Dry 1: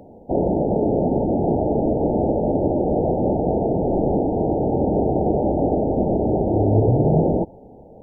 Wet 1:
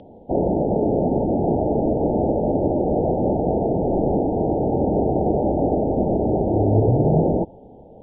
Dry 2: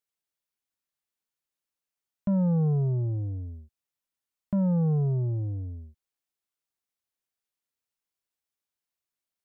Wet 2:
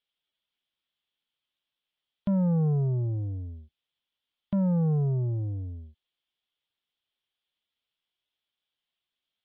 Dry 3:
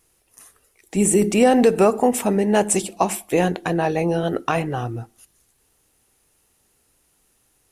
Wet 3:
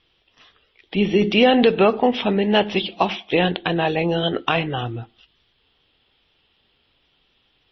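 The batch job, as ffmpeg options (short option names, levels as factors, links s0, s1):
-af "lowpass=f=3300:t=q:w=6.3" -ar 22050 -c:a libmp3lame -b:a 24k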